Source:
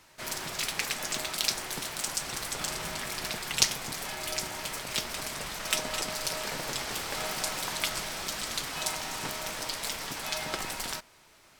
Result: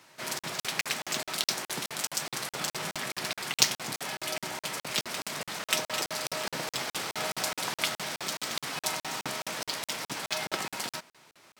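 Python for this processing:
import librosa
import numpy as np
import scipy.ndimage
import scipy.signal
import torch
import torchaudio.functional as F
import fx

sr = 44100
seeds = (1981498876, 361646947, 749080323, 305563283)

y = scipy.signal.sosfilt(scipy.signal.butter(4, 120.0, 'highpass', fs=sr, output='sos'), x)
y = fx.buffer_crackle(y, sr, first_s=0.39, period_s=0.21, block=2048, kind='zero')
y = np.interp(np.arange(len(y)), np.arange(len(y))[::2], y[::2])
y = F.gain(torch.from_numpy(y), 2.0).numpy()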